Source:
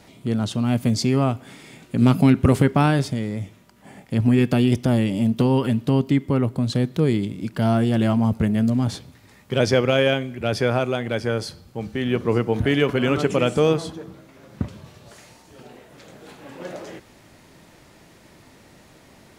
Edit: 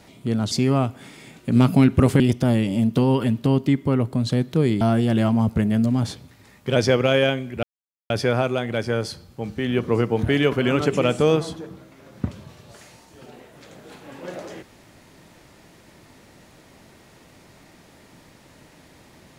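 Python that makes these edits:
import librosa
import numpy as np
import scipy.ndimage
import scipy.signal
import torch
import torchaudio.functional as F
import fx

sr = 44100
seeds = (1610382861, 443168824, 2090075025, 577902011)

y = fx.edit(x, sr, fx.cut(start_s=0.51, length_s=0.46),
    fx.cut(start_s=2.66, length_s=1.97),
    fx.cut(start_s=7.24, length_s=0.41),
    fx.insert_silence(at_s=10.47, length_s=0.47), tone=tone)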